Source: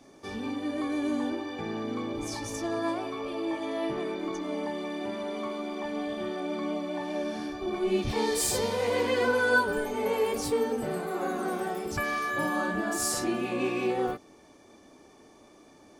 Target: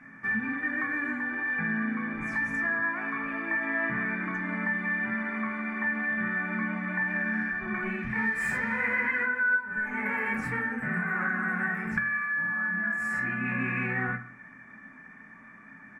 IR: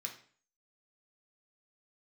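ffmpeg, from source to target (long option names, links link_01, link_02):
-filter_complex "[0:a]firequalizer=gain_entry='entry(240,0);entry(340,-21);entry(1700,12);entry(3400,-29)':delay=0.05:min_phase=1,acompressor=threshold=-34dB:ratio=16,asplit=2[link_01][link_02];[1:a]atrim=start_sample=2205[link_03];[link_02][link_03]afir=irnorm=-1:irlink=0,volume=1dB[link_04];[link_01][link_04]amix=inputs=2:normalize=0,volume=6.5dB"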